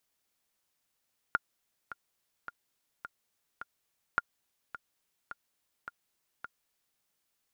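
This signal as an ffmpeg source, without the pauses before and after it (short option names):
-f lavfi -i "aevalsrc='pow(10,(-13-14.5*gte(mod(t,5*60/106),60/106))/20)*sin(2*PI*1410*mod(t,60/106))*exp(-6.91*mod(t,60/106)/0.03)':d=5.66:s=44100"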